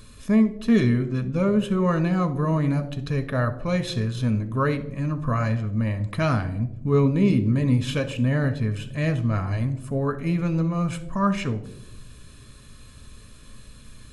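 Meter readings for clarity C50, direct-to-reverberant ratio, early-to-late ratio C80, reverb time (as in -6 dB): 13.5 dB, 9.0 dB, 17.5 dB, 0.85 s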